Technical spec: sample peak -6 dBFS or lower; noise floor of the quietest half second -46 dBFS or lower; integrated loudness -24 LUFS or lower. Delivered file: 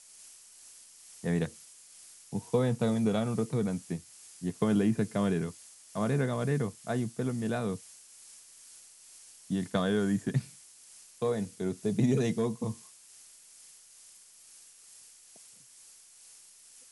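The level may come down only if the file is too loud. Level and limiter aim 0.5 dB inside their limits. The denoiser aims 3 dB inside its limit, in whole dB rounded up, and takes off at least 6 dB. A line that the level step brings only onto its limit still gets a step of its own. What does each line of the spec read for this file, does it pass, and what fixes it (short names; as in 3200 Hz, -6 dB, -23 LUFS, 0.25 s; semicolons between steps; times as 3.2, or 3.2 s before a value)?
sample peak -14.0 dBFS: OK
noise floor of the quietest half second -56 dBFS: OK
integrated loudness -31.5 LUFS: OK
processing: none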